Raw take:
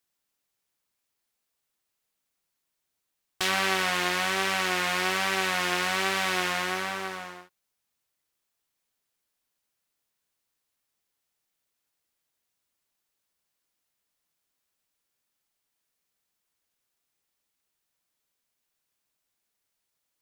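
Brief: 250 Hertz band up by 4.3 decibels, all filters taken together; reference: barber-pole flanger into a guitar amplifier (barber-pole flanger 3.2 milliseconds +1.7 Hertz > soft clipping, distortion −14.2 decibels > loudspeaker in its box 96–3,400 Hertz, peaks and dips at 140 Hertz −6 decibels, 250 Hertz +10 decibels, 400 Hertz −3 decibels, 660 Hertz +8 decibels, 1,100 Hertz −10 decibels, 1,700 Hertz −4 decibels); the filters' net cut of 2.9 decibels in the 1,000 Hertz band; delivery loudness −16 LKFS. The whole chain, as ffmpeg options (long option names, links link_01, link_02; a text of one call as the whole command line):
ffmpeg -i in.wav -filter_complex "[0:a]equalizer=frequency=250:width_type=o:gain=7,equalizer=frequency=1000:width_type=o:gain=-4,asplit=2[link_01][link_02];[link_02]adelay=3.2,afreqshift=1.7[link_03];[link_01][link_03]amix=inputs=2:normalize=1,asoftclip=threshold=-23.5dB,highpass=96,equalizer=frequency=140:width_type=q:width=4:gain=-6,equalizer=frequency=250:width_type=q:width=4:gain=10,equalizer=frequency=400:width_type=q:width=4:gain=-3,equalizer=frequency=660:width_type=q:width=4:gain=8,equalizer=frequency=1100:width_type=q:width=4:gain=-10,equalizer=frequency=1700:width_type=q:width=4:gain=-4,lowpass=frequency=3400:width=0.5412,lowpass=frequency=3400:width=1.3066,volume=17.5dB" out.wav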